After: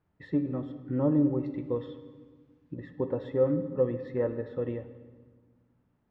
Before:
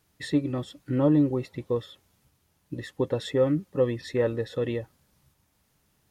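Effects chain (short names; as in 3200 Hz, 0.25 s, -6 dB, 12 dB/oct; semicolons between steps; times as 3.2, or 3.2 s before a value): LPF 1400 Hz 12 dB/oct, from 1.46 s 2400 Hz, from 2.74 s 1400 Hz; reverb RT60 1.5 s, pre-delay 3 ms, DRR 8 dB; gain -4.5 dB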